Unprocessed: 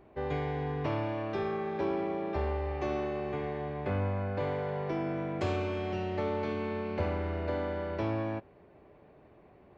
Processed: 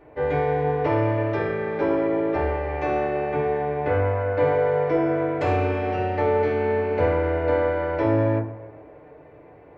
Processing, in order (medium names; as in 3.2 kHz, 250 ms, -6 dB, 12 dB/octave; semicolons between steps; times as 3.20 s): ten-band graphic EQ 250 Hz -6 dB, 500 Hz +8 dB, 2 kHz +7 dB; on a send: tape echo 130 ms, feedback 74%, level -15 dB, low-pass 2.1 kHz; on the sum: FDN reverb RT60 0.32 s, low-frequency decay 1.55×, high-frequency decay 0.25×, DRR -3 dB